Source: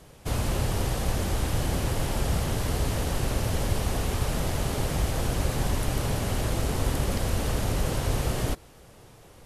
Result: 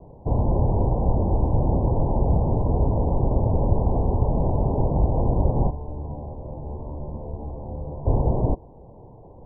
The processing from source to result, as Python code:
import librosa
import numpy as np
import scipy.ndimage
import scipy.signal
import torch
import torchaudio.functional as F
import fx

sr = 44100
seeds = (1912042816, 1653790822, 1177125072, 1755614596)

y = scipy.signal.sosfilt(scipy.signal.butter(16, 1000.0, 'lowpass', fs=sr, output='sos'), x)
y = fx.comb_fb(y, sr, f0_hz=74.0, decay_s=0.89, harmonics='all', damping=0.0, mix_pct=90, at=(5.69, 8.05), fade=0.02)
y = y * librosa.db_to_amplitude(6.5)